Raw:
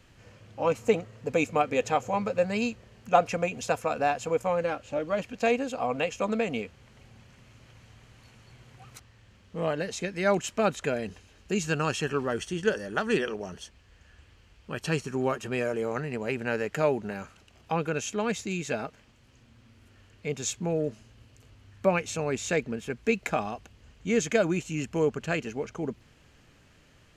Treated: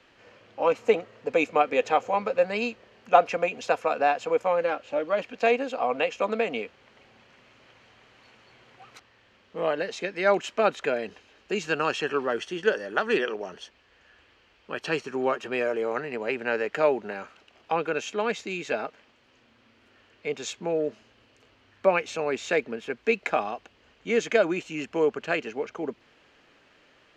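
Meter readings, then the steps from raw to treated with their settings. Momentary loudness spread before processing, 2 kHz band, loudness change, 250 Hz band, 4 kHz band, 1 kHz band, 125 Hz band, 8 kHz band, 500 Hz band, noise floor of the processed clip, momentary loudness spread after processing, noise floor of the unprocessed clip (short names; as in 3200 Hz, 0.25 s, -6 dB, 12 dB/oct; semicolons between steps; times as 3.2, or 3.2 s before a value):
10 LU, +3.5 dB, +2.0 dB, -2.5 dB, +2.0 dB, +3.5 dB, -9.5 dB, -6.5 dB, +3.0 dB, -62 dBFS, 11 LU, -59 dBFS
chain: three-band isolator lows -19 dB, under 270 Hz, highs -18 dB, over 5000 Hz; gain +3.5 dB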